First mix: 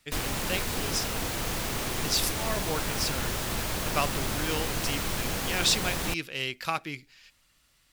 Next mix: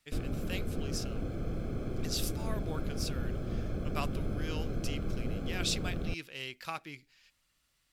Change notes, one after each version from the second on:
speech -9.0 dB; background: add boxcar filter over 47 samples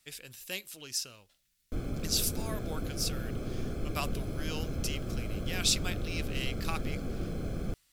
background: entry +1.60 s; master: add treble shelf 4.1 kHz +10 dB

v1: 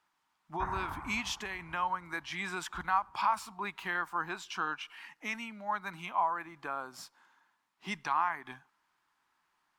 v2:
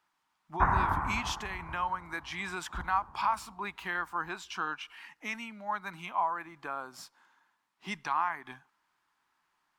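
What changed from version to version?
background +11.5 dB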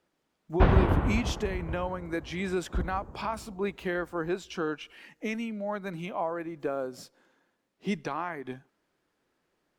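background: remove steep low-pass 1.9 kHz; master: add resonant low shelf 700 Hz +10.5 dB, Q 3

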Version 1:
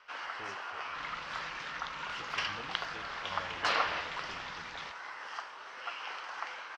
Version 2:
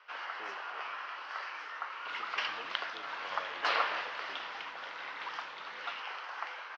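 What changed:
second sound: entry +1.10 s; master: add three-band isolator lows -22 dB, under 280 Hz, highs -22 dB, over 5.4 kHz

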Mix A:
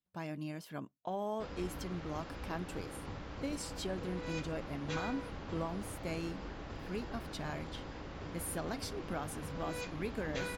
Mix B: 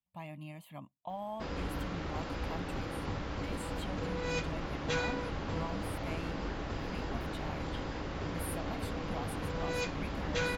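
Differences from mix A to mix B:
speech: add static phaser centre 1.5 kHz, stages 6; background +7.0 dB

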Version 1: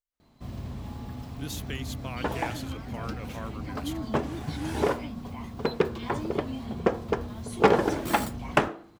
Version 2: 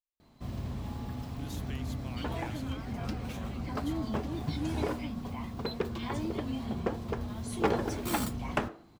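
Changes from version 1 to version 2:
speech -10.0 dB; second sound -9.0 dB

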